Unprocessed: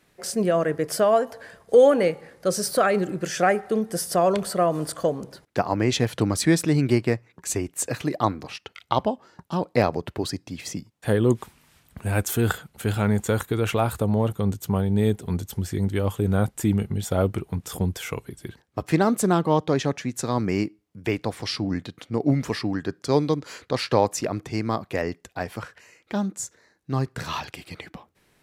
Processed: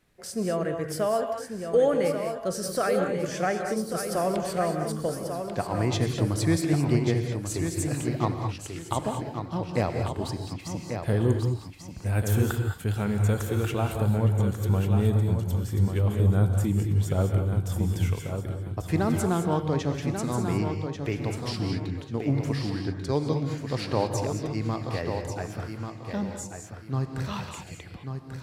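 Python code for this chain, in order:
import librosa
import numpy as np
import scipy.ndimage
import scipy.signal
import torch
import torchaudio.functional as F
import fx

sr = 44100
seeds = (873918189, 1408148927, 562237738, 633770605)

p1 = fx.low_shelf(x, sr, hz=110.0, db=11.5)
p2 = p1 + fx.echo_feedback(p1, sr, ms=1140, feedback_pct=27, wet_db=-7.0, dry=0)
p3 = fx.rev_gated(p2, sr, seeds[0], gate_ms=240, shape='rising', drr_db=5.0)
y = p3 * 10.0 ** (-7.5 / 20.0)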